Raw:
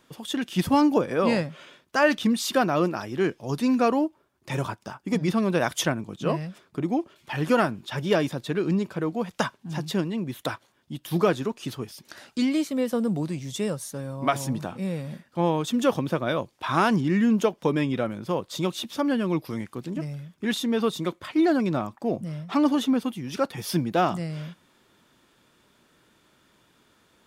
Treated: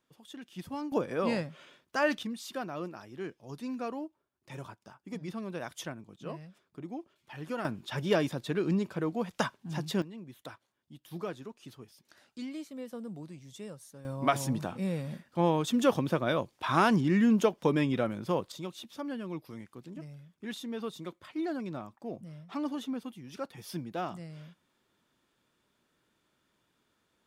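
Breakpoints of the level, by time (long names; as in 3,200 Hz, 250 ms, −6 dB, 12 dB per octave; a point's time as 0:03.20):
−18 dB
from 0:00.92 −7.5 dB
from 0:02.23 −15 dB
from 0:07.65 −4.5 dB
from 0:10.02 −16 dB
from 0:14.05 −3 dB
from 0:18.52 −13 dB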